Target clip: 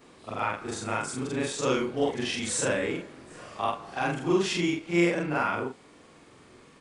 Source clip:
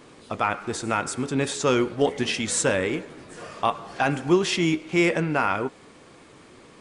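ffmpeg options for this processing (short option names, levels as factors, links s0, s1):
-af "afftfilt=real='re':imag='-im':win_size=4096:overlap=0.75"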